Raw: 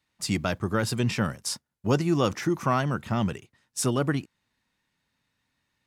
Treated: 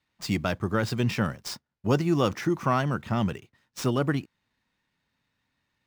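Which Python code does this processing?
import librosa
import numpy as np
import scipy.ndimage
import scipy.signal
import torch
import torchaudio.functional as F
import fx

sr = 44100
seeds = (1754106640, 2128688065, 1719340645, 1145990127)

y = scipy.ndimage.median_filter(x, 5, mode='constant')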